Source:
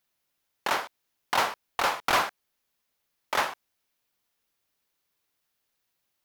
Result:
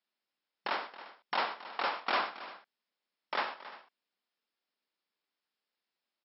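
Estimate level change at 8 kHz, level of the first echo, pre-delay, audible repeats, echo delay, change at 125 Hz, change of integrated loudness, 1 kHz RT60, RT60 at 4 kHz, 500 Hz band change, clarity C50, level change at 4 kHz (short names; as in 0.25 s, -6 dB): under -40 dB, -13.0 dB, none, 3, 96 ms, under -15 dB, -7.0 dB, none, none, -6.5 dB, none, -6.5 dB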